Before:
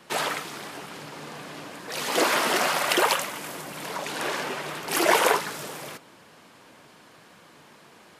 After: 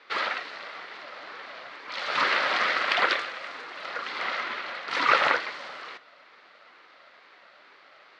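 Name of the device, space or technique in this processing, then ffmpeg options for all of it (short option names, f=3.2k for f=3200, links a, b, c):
voice changer toy: -af "aeval=exprs='val(0)*sin(2*PI*490*n/s+490*0.3/2.2*sin(2*PI*2.2*n/s))':c=same,highpass=460,equalizer=f=560:t=q:w=4:g=4,equalizer=f=860:t=q:w=4:g=-4,equalizer=f=1.3k:t=q:w=4:g=6,equalizer=f=2k:t=q:w=4:g=6,equalizer=f=4.3k:t=q:w=4:g=5,lowpass=f=4.4k:w=0.5412,lowpass=f=4.4k:w=1.3066"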